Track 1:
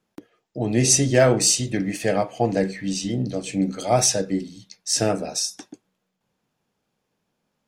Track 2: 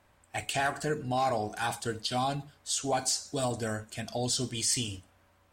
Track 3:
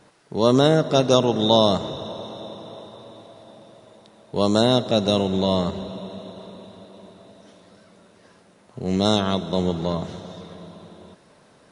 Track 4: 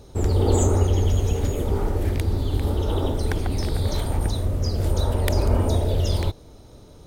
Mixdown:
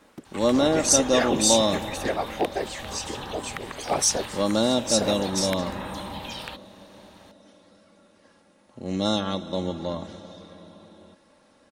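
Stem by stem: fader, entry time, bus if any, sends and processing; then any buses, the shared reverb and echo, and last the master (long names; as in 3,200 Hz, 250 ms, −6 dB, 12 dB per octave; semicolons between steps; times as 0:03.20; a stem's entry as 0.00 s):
−2.0 dB, 0.00 s, no bus, no send, harmonic-percussive split with one part muted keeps percussive; random phases in short frames
−4.0 dB, 0.00 s, bus A, no send, multiband upward and downward compressor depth 40%
−6.0 dB, 0.00 s, no bus, no send, comb filter 3.6 ms, depth 63%
+1.0 dB, 0.25 s, bus A, no send, Butterworth high-pass 400 Hz 96 dB per octave; flat-topped bell 2,100 Hz +9.5 dB
bus A: 0.0 dB, ring modulation 360 Hz; downward compressor 2.5 to 1, threshold −35 dBFS, peak gain reduction 12 dB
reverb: not used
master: no processing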